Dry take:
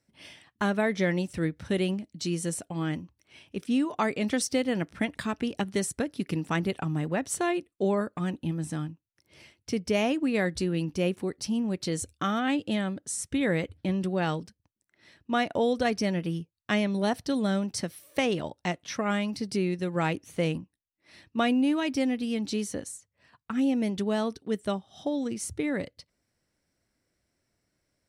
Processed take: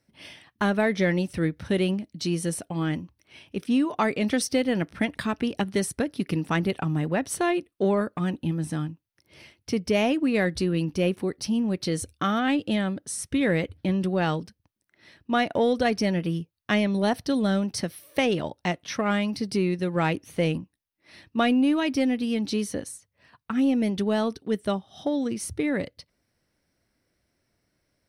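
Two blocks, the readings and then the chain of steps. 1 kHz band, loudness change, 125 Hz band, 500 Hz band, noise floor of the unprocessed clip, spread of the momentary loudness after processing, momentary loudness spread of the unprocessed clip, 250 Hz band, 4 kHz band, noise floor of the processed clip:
+3.0 dB, +3.0 dB, +3.5 dB, +3.0 dB, -80 dBFS, 8 LU, 7 LU, +3.5 dB, +3.0 dB, -76 dBFS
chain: peaking EQ 7.3 kHz -10 dB 0.3 oct; in parallel at -10 dB: saturation -24 dBFS, distortion -13 dB; on the sum: trim +1.5 dB

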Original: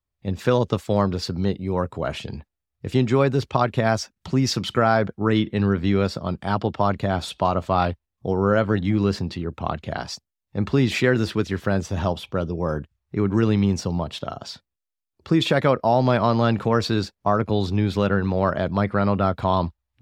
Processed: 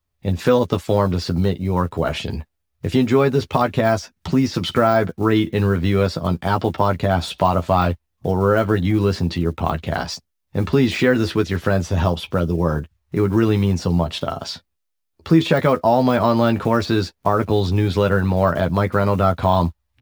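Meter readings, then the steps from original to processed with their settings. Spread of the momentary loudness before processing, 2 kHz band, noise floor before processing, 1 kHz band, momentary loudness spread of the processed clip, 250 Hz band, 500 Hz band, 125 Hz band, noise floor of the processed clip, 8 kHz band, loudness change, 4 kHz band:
11 LU, +2.5 dB, -84 dBFS, +3.0 dB, 8 LU, +3.0 dB, +4.0 dB, +3.5 dB, -75 dBFS, +0.5 dB, +3.5 dB, +2.0 dB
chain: block-companded coder 7-bit; de-esser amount 75%; peaking EQ 7.7 kHz -2.5 dB 0.24 oct; in parallel at +1 dB: compression, threshold -26 dBFS, peak gain reduction 12 dB; on the sum: doubling 12 ms -6 dB

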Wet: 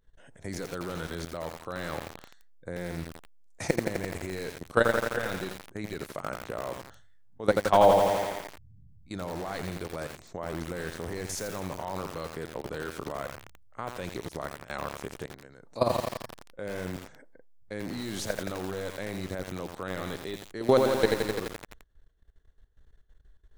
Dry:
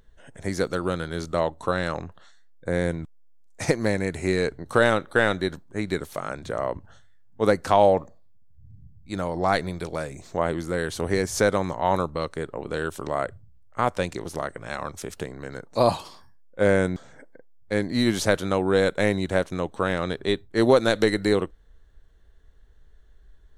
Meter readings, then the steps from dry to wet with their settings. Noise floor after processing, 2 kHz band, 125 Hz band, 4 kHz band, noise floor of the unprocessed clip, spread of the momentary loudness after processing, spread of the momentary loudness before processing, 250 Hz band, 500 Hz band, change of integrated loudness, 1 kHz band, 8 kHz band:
-57 dBFS, -7.5 dB, -8.0 dB, -6.5 dB, -52 dBFS, 16 LU, 13 LU, -8.5 dB, -5.5 dB, -6.0 dB, -4.5 dB, -4.5 dB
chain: level held to a coarse grid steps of 17 dB; bit-crushed delay 85 ms, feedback 80%, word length 6-bit, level -3.5 dB; trim -1.5 dB

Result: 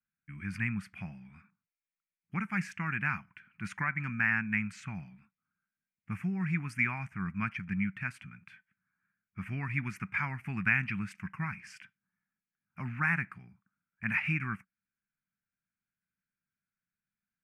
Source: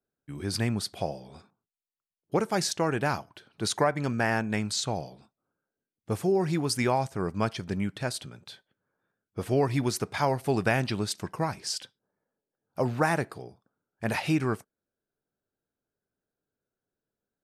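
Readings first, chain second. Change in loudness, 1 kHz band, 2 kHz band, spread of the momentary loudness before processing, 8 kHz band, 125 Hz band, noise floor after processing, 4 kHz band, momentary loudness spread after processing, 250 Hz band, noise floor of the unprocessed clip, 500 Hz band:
-4.5 dB, -10.0 dB, +2.5 dB, 12 LU, -21.5 dB, -5.0 dB, under -85 dBFS, -20.0 dB, 16 LU, -6.0 dB, under -85 dBFS, -27.5 dB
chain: FFT filter 130 Hz 0 dB, 190 Hz +7 dB, 490 Hz -29 dB, 1.3 kHz +5 dB, 2.4 kHz +13 dB, 3.8 kHz -22 dB, 5.8 kHz -15 dB; trim -6.5 dB

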